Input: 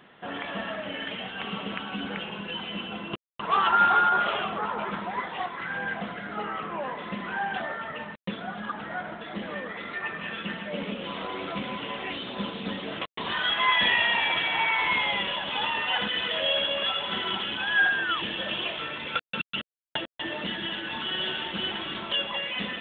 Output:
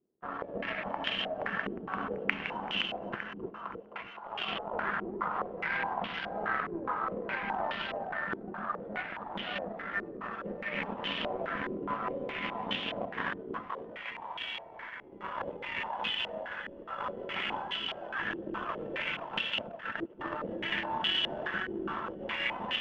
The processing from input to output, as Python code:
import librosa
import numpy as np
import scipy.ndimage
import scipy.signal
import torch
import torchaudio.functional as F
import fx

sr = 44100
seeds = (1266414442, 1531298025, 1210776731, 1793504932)

y = fx.over_compress(x, sr, threshold_db=-32.0, ratio=-1.0)
y = fx.power_curve(y, sr, exponent=2.0)
y = fx.echo_split(y, sr, split_hz=480.0, low_ms=305, high_ms=521, feedback_pct=52, wet_db=-3)
y = fx.filter_held_lowpass(y, sr, hz=4.8, low_hz=370.0, high_hz=3000.0)
y = y * librosa.db_to_amplitude(3.5)